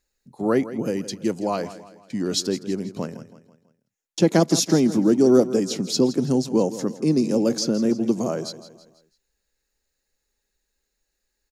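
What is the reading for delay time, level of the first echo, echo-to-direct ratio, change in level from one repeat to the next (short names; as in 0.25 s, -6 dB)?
0.164 s, -14.5 dB, -13.5 dB, -7.0 dB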